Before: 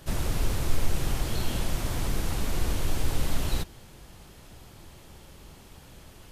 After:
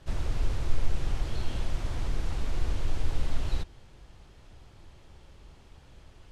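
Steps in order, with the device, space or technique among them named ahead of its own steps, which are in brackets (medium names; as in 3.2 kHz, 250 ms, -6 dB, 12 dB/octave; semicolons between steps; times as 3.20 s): distance through air 74 m; low shelf boost with a cut just above (bass shelf 100 Hz +6 dB; peaking EQ 190 Hz -4 dB 1 oct); trim -5.5 dB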